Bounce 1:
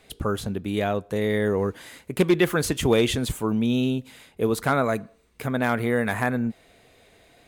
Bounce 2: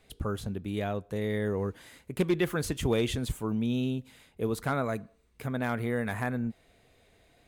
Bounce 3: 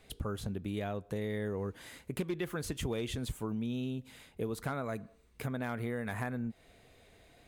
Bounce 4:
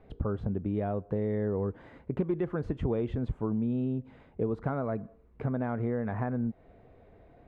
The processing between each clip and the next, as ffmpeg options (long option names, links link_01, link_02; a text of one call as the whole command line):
ffmpeg -i in.wav -af "lowshelf=frequency=130:gain=8,volume=-8.5dB" out.wav
ffmpeg -i in.wav -af "acompressor=threshold=-36dB:ratio=4,volume=2dB" out.wav
ffmpeg -i in.wav -af "lowpass=1000,volume=6dB" out.wav